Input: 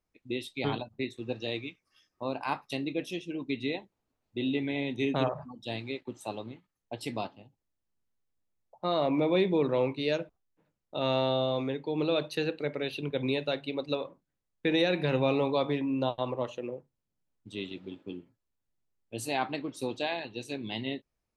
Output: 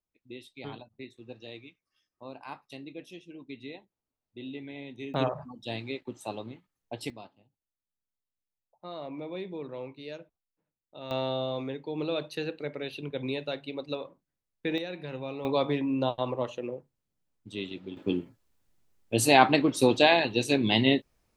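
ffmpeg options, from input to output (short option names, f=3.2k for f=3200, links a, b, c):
-af "asetnsamples=n=441:p=0,asendcmd='5.14 volume volume 0.5dB;7.1 volume volume -12dB;11.11 volume volume -3dB;14.78 volume volume -10.5dB;15.45 volume volume 1.5dB;17.97 volume volume 12dB',volume=-10dB"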